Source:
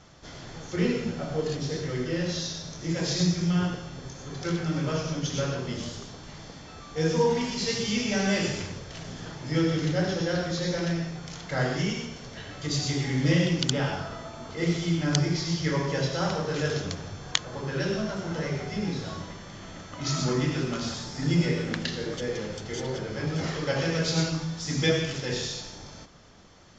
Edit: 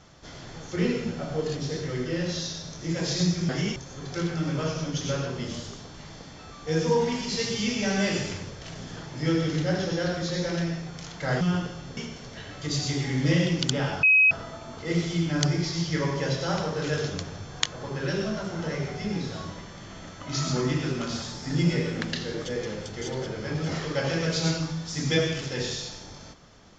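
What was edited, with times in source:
3.49–4.05 s: swap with 11.70–11.97 s
14.03 s: add tone 2.54 kHz -14.5 dBFS 0.28 s

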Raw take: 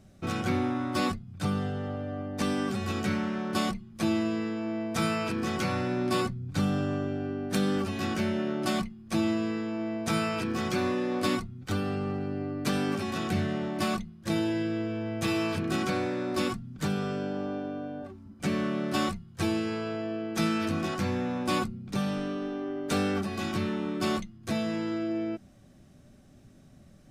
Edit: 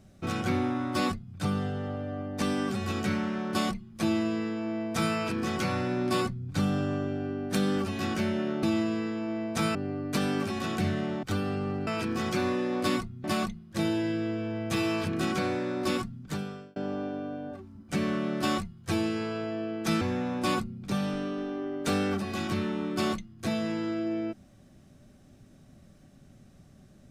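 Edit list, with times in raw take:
8.63–9.14 s: delete
10.26–11.63 s: swap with 12.27–13.75 s
16.63–17.27 s: fade out
20.52–21.05 s: delete

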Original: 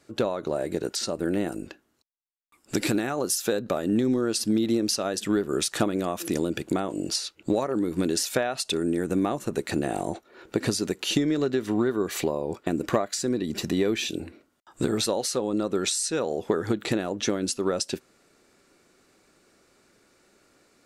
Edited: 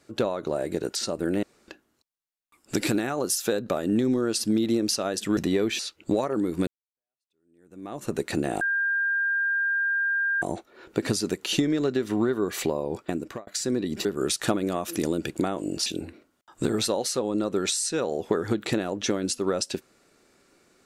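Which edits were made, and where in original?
1.43–1.68 s: room tone
5.37–7.18 s: swap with 13.63–14.05 s
8.06–9.43 s: fade in exponential
10.00 s: add tone 1.6 kHz -22 dBFS 1.81 s
12.60–13.05 s: fade out

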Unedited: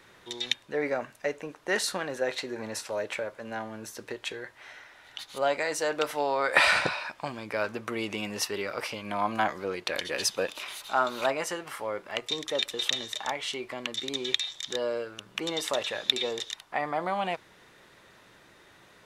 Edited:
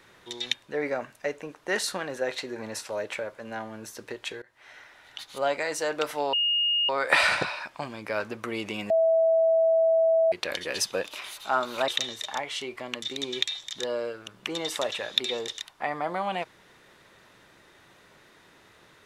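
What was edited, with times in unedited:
4.42–4.81 s: fade in, from -24 dB
6.33 s: add tone 2.85 kHz -21.5 dBFS 0.56 s
8.34–9.76 s: bleep 653 Hz -18 dBFS
11.32–12.80 s: delete

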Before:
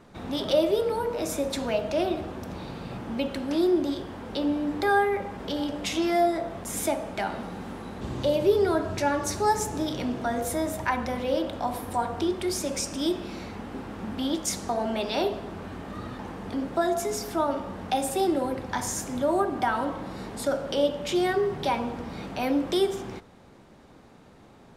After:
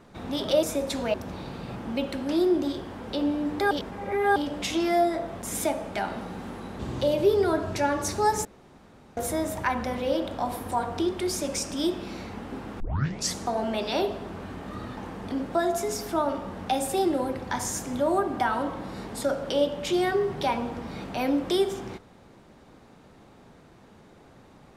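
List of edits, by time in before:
0.63–1.26 s: delete
1.77–2.36 s: delete
4.93–5.58 s: reverse
9.67–10.39 s: room tone
14.02 s: tape start 0.54 s

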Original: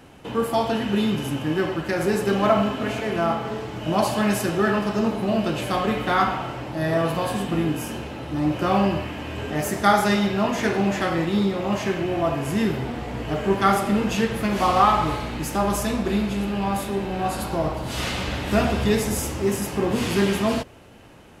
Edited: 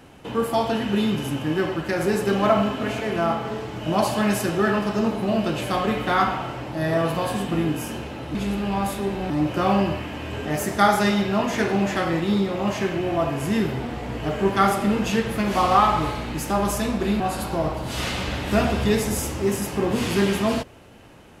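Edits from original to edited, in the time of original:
16.25–17.20 s: move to 8.35 s

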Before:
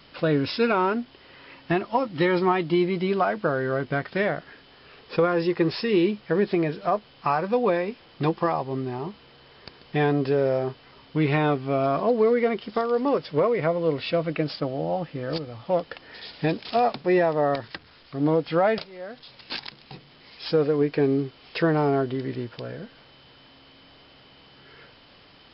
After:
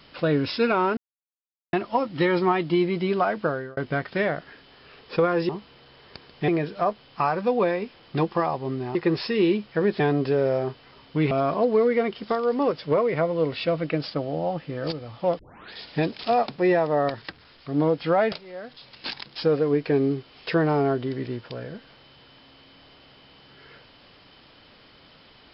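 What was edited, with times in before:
0.97–1.73 s: mute
3.45–3.77 s: fade out
5.49–6.54 s: swap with 9.01–10.00 s
11.31–11.77 s: delete
15.85 s: tape start 0.34 s
19.82–20.44 s: delete

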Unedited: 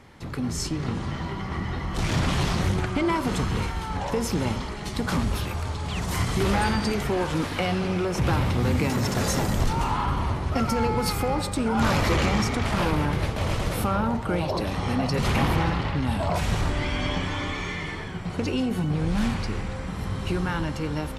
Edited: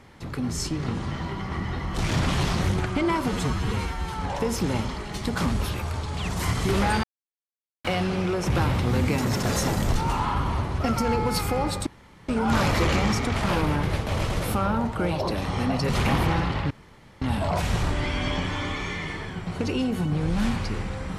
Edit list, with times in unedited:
3.28–3.85 s: stretch 1.5×
6.75–7.56 s: mute
11.58 s: insert room tone 0.42 s
16.00 s: insert room tone 0.51 s

